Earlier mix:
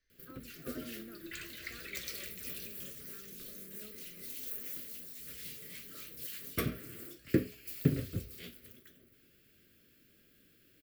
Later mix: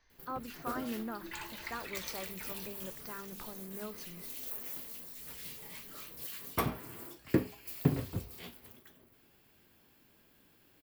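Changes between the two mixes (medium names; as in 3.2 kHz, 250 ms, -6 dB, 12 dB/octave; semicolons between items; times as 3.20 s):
speech +10.5 dB; master: remove Butterworth band-stop 880 Hz, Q 1.1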